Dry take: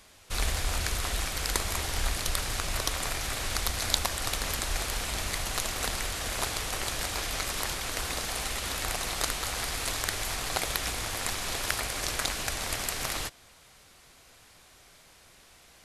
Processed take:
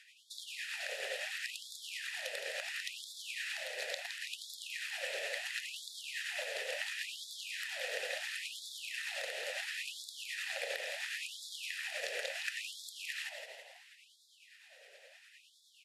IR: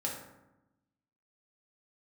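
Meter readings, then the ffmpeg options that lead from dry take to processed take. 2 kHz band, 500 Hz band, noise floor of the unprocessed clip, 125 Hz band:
−4.0 dB, −6.0 dB, −57 dBFS, below −40 dB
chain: -filter_complex "[0:a]highshelf=frequency=4100:gain=11,bandreject=frequency=6100:width=24,acompressor=threshold=-27dB:ratio=6,asplit=3[link_01][link_02][link_03];[link_01]bandpass=frequency=530:width_type=q:width=8,volume=0dB[link_04];[link_02]bandpass=frequency=1840:width_type=q:width=8,volume=-6dB[link_05];[link_03]bandpass=frequency=2480:width_type=q:width=8,volume=-9dB[link_06];[link_04][link_05][link_06]amix=inputs=3:normalize=0,tremolo=f=9.7:d=0.47,asplit=2[link_07][link_08];[link_08]asplit=6[link_09][link_10][link_11][link_12][link_13][link_14];[link_09]adelay=165,afreqshift=51,volume=-7dB[link_15];[link_10]adelay=330,afreqshift=102,volume=-12.7dB[link_16];[link_11]adelay=495,afreqshift=153,volume=-18.4dB[link_17];[link_12]adelay=660,afreqshift=204,volume=-24dB[link_18];[link_13]adelay=825,afreqshift=255,volume=-29.7dB[link_19];[link_14]adelay=990,afreqshift=306,volume=-35.4dB[link_20];[link_15][link_16][link_17][link_18][link_19][link_20]amix=inputs=6:normalize=0[link_21];[link_07][link_21]amix=inputs=2:normalize=0,afftfilt=real='re*gte(b*sr/1024,370*pow(3400/370,0.5+0.5*sin(2*PI*0.72*pts/sr)))':imag='im*gte(b*sr/1024,370*pow(3400/370,0.5+0.5*sin(2*PI*0.72*pts/sr)))':win_size=1024:overlap=0.75,volume=11.5dB"

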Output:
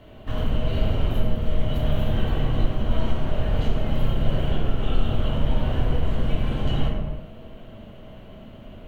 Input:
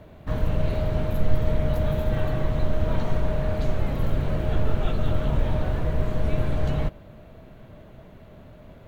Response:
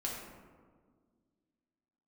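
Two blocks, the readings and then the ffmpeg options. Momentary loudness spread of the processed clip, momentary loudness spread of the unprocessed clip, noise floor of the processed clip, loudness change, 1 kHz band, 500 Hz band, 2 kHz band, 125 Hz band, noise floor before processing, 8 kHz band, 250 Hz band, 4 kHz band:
18 LU, 2 LU, −43 dBFS, +0.5 dB, +0.5 dB, −2.0 dB, 0.0 dB, +0.5 dB, −47 dBFS, can't be measured, +1.5 dB, +7.5 dB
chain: -filter_complex "[0:a]equalizer=frequency=3000:width=5.7:gain=14.5,acompressor=threshold=-20dB:ratio=6[link_01];[1:a]atrim=start_sample=2205,afade=type=out:start_time=0.44:duration=0.01,atrim=end_sample=19845[link_02];[link_01][link_02]afir=irnorm=-1:irlink=0"

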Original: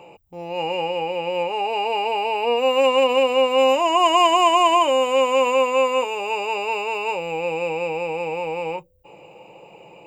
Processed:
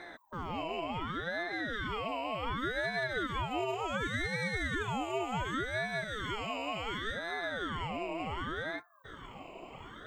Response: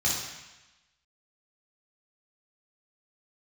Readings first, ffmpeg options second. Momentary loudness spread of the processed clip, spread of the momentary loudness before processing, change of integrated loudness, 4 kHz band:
11 LU, 11 LU, −15.5 dB, −15.5 dB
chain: -af "acompressor=threshold=-34dB:ratio=3,aeval=exprs='val(0)*sin(2*PI*680*n/s+680*0.8/0.68*sin(2*PI*0.68*n/s))':channel_layout=same"

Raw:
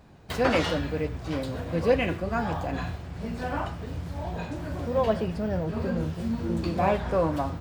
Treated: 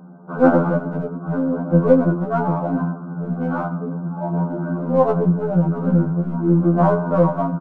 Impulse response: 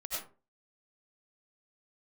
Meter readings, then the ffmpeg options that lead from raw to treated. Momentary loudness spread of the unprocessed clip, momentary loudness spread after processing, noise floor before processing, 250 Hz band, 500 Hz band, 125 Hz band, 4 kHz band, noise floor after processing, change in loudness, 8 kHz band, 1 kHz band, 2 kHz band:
10 LU, 11 LU, −39 dBFS, +11.5 dB, +7.5 dB, +11.0 dB, below −15 dB, −33 dBFS, +9.0 dB, below −15 dB, +7.0 dB, +1.0 dB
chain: -filter_complex "[0:a]aeval=exprs='val(0)+0.00708*(sin(2*PI*60*n/s)+sin(2*PI*2*60*n/s)/2+sin(2*PI*3*60*n/s)/3+sin(2*PI*4*60*n/s)/4+sin(2*PI*5*60*n/s)/5)':channel_layout=same,afftfilt=real='re*between(b*sr/4096,120,1600)':imag='im*between(b*sr/4096,120,1600)':win_size=4096:overlap=0.75,adynamicequalizer=threshold=0.00631:dfrequency=210:dqfactor=1.7:tfrequency=210:tqfactor=1.7:attack=5:release=100:ratio=0.375:range=3:mode=boostabove:tftype=bell,asplit=2[link_01][link_02];[link_02]aeval=exprs='clip(val(0),-1,0.0266)':channel_layout=same,volume=-11.5dB[link_03];[link_01][link_03]amix=inputs=2:normalize=0,bandreject=frequency=206.3:width_type=h:width=4,bandreject=frequency=412.6:width_type=h:width=4,bandreject=frequency=618.9:width_type=h:width=4,bandreject=frequency=825.2:width_type=h:width=4,bandreject=frequency=1031.5:width_type=h:width=4,asplit=2[link_04][link_05];[link_05]aecho=0:1:124:0.0794[link_06];[link_04][link_06]amix=inputs=2:normalize=0,afftfilt=real='re*2*eq(mod(b,4),0)':imag='im*2*eq(mod(b,4),0)':win_size=2048:overlap=0.75,volume=8dB"

